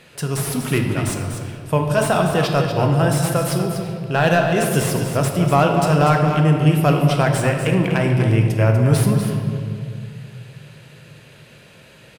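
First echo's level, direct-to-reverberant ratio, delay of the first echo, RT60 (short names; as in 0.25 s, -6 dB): -8.0 dB, 1.5 dB, 0.244 s, 2.2 s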